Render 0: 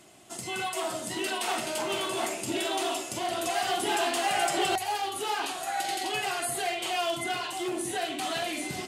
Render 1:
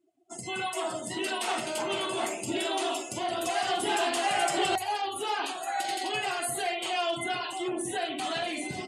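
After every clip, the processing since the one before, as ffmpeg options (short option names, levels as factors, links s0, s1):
-af "afftdn=nr=33:nf=-43"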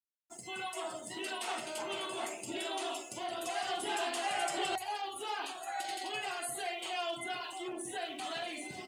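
-af "lowshelf=f=250:g=-7,aeval=exprs='sgn(val(0))*max(abs(val(0))-0.00133,0)':c=same,volume=0.473"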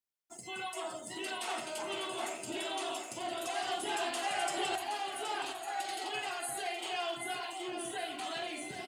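-af "aecho=1:1:771|1542|2313|3084|3855:0.355|0.145|0.0596|0.0245|0.01"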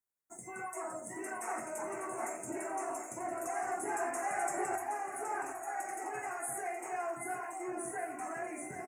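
-filter_complex "[0:a]asuperstop=centerf=3700:order=8:qfactor=0.89,asplit=2[s0][s1];[s1]adelay=22,volume=0.266[s2];[s0][s2]amix=inputs=2:normalize=0"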